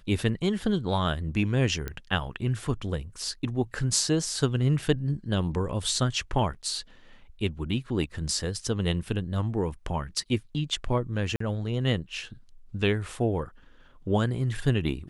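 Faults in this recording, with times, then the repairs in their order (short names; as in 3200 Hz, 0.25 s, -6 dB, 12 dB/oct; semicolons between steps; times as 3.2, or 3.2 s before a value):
1.88 pop -18 dBFS
11.36–11.4 gap 44 ms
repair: de-click; interpolate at 11.36, 44 ms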